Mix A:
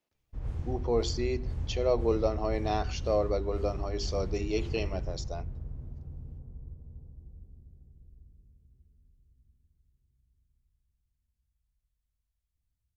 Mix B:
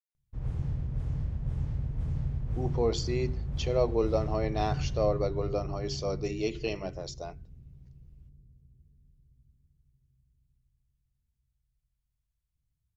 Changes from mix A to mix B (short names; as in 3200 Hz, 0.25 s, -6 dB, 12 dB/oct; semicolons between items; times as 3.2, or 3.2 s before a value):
speech: entry +1.90 s; background: add bell 140 Hz +11.5 dB 0.48 oct